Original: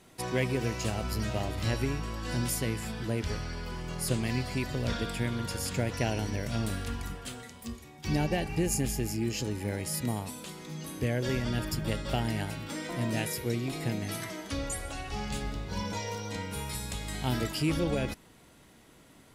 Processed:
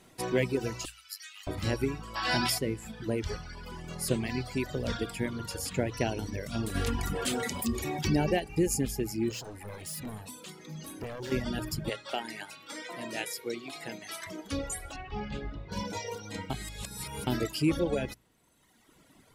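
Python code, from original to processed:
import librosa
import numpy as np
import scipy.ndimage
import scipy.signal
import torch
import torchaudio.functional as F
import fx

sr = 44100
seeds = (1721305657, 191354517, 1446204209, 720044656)

y = fx.bessel_highpass(x, sr, hz=2300.0, order=6, at=(0.85, 1.47))
y = fx.spec_box(y, sr, start_s=2.15, length_s=0.43, low_hz=620.0, high_hz=5600.0, gain_db=12)
y = fx.env_flatten(y, sr, amount_pct=70, at=(6.74, 8.38), fade=0.02)
y = fx.clip_hard(y, sr, threshold_db=-35.0, at=(9.31, 11.32))
y = fx.weighting(y, sr, curve='A', at=(11.89, 14.27))
y = fx.lowpass(y, sr, hz=3000.0, slope=12, at=(14.96, 15.72))
y = fx.edit(y, sr, fx.reverse_span(start_s=16.5, length_s=0.77), tone=tone)
y = fx.dereverb_blind(y, sr, rt60_s=1.5)
y = fx.hum_notches(y, sr, base_hz=60, count=2)
y = fx.dynamic_eq(y, sr, hz=380.0, q=1.2, threshold_db=-44.0, ratio=4.0, max_db=5)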